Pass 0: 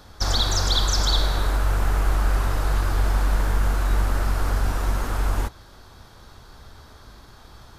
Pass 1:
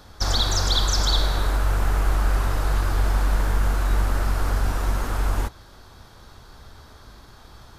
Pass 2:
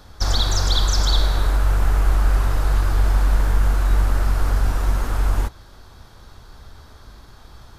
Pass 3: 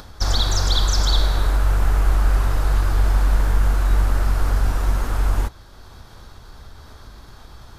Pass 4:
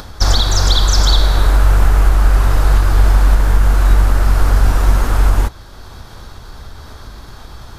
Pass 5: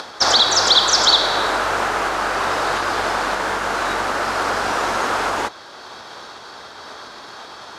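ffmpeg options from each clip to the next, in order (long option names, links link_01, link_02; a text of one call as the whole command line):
ffmpeg -i in.wav -af anull out.wav
ffmpeg -i in.wav -af "lowshelf=frequency=79:gain=5.5" out.wav
ffmpeg -i in.wav -af "acompressor=mode=upward:threshold=-35dB:ratio=2.5" out.wav
ffmpeg -i in.wav -af "alimiter=limit=-9.5dB:level=0:latency=1:release=372,volume=8dB" out.wav
ffmpeg -i in.wav -af "highpass=440,lowpass=6200,volume=5dB" out.wav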